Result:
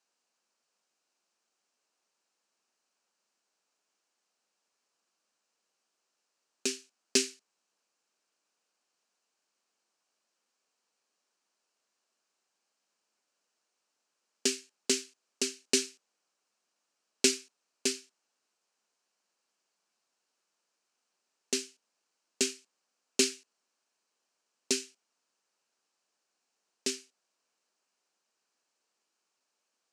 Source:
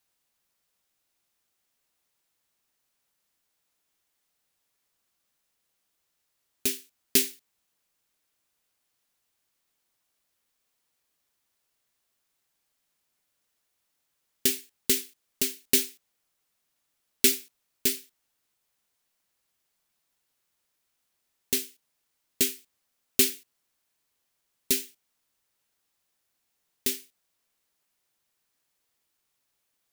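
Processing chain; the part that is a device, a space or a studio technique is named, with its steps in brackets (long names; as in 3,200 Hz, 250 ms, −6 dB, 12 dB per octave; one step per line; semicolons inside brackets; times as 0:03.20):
television speaker (loudspeaker in its box 220–7,500 Hz, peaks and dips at 290 Hz −4 dB, 2,000 Hz −7 dB, 3,500 Hz −8 dB)
level +1.5 dB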